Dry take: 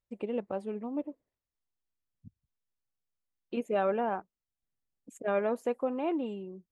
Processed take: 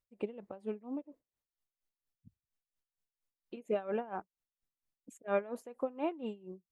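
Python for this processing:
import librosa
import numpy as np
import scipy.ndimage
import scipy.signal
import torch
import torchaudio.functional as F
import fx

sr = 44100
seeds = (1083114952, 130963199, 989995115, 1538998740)

y = x * 10.0 ** (-19 * (0.5 - 0.5 * np.cos(2.0 * np.pi * 4.3 * np.arange(len(x)) / sr)) / 20.0)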